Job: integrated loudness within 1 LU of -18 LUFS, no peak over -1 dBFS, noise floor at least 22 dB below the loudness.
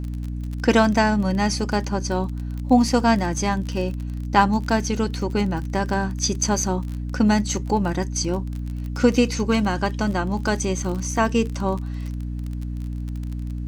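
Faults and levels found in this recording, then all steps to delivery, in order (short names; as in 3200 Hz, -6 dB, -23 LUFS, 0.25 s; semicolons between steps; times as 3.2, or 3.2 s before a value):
ticks 32/s; hum 60 Hz; harmonics up to 300 Hz; hum level -26 dBFS; loudness -23.0 LUFS; peak -2.5 dBFS; loudness target -18.0 LUFS
-> de-click; de-hum 60 Hz, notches 5; gain +5 dB; limiter -1 dBFS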